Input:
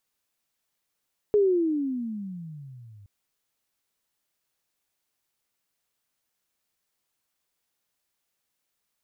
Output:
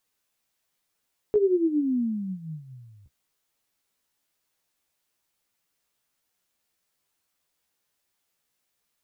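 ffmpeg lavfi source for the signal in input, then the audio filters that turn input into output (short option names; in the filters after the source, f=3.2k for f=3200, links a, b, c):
-f lavfi -i "aevalsrc='pow(10,(-16-30.5*t/1.72)/20)*sin(2*PI*425*1.72/(-25.5*log(2)/12)*(exp(-25.5*log(2)/12*t/1.72)-1))':d=1.72:s=44100"
-filter_complex "[0:a]asplit=2[a][b];[b]alimiter=level_in=0.5dB:limit=-24dB:level=0:latency=1,volume=-0.5dB,volume=-0.5dB[c];[a][c]amix=inputs=2:normalize=0,flanger=delay=9.6:depth=7:regen=21:speed=1.1:shape=triangular"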